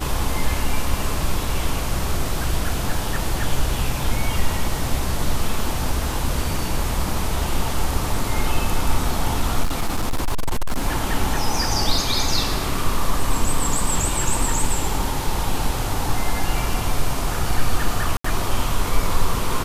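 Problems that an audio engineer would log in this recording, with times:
9.63–10.87 s: clipped -16 dBFS
18.17–18.24 s: dropout 74 ms

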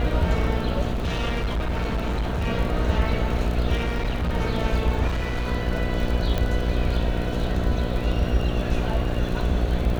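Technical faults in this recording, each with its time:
buzz 60 Hz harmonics 12 -27 dBFS
crackle 44 per s -29 dBFS
0.93–2.48 s: clipped -21 dBFS
3.75–4.34 s: clipped -20.5 dBFS
5.07–5.49 s: clipped -21.5 dBFS
6.38 s: pop -12 dBFS

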